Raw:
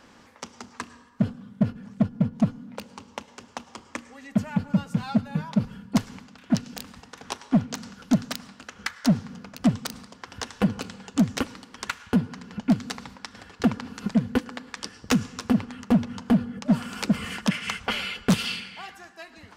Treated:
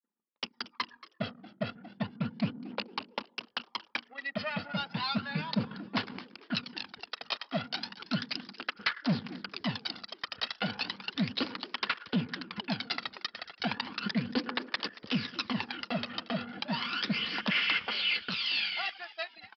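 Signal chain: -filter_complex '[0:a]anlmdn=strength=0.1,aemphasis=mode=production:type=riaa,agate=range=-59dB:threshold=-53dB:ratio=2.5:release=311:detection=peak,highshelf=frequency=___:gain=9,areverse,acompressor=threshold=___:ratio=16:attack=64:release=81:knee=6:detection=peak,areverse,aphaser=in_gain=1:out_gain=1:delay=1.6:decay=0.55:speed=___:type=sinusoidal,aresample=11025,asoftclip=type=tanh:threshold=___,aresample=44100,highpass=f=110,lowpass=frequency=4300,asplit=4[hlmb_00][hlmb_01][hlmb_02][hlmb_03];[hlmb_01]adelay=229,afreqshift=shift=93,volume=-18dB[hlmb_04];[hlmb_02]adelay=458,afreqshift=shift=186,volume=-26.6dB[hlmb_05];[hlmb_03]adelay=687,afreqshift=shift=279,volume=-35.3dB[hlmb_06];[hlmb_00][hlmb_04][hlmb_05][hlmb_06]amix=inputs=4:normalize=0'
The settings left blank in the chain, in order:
2000, -32dB, 0.34, -19dB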